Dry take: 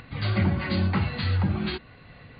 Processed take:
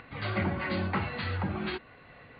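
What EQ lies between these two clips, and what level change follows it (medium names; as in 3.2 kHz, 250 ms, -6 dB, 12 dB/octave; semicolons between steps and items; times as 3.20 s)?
tone controls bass -10 dB, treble -15 dB; 0.0 dB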